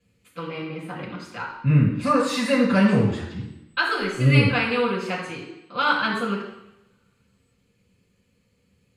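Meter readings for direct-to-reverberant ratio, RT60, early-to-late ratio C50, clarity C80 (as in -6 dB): -5.5 dB, 0.85 s, 4.0 dB, 6.5 dB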